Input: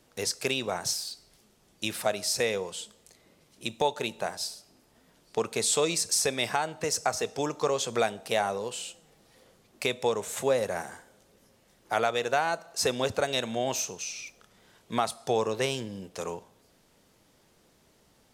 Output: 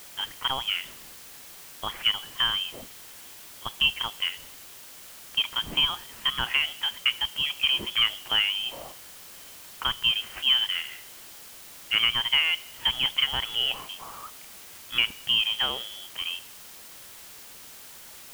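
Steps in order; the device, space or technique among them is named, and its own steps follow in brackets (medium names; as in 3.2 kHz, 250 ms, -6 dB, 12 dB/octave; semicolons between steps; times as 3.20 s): scrambled radio voice (band-pass 330–3100 Hz; frequency inversion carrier 3.6 kHz; white noise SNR 16 dB); trim +3.5 dB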